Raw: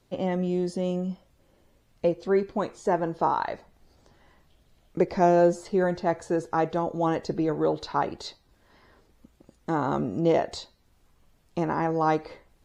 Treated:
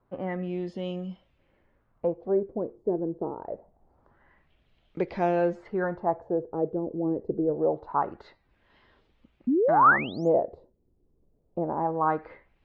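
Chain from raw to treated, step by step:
sound drawn into the spectrogram rise, 0:09.47–0:10.29, 230–7,500 Hz −17 dBFS
auto-filter low-pass sine 0.25 Hz 380–3,200 Hz
level −5.5 dB

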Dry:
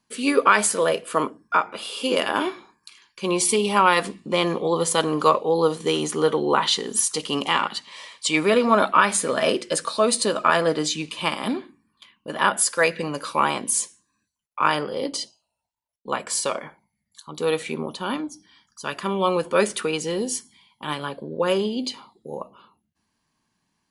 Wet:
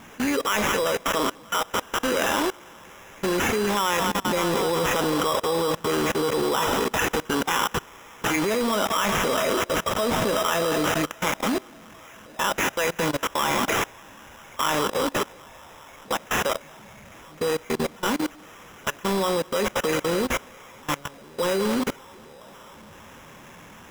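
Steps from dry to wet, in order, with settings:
converter with a step at zero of −23.5 dBFS
on a send: delay with a band-pass on its return 196 ms, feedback 84%, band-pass 1,100 Hz, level −9 dB
on the sum: bit reduction 6 bits
output level in coarse steps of 23 dB
decimation without filtering 10×

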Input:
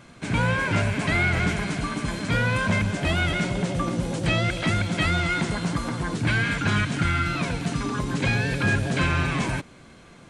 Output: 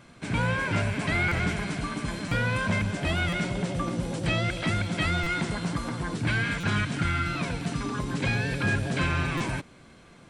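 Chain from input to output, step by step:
notch filter 6,600 Hz, Q 21
buffer that repeats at 0:01.28/0:02.28/0:03.29/0:05.23/0:06.60/0:09.37, samples 256, times 5
level −3.5 dB

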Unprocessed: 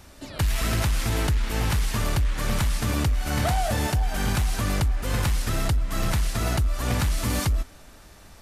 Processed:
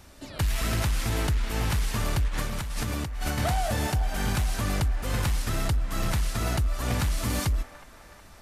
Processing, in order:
0:02.28–0:03.38: compressor whose output falls as the input rises −27 dBFS, ratio −1
delay with a band-pass on its return 367 ms, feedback 60%, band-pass 1,100 Hz, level −14.5 dB
level −2.5 dB

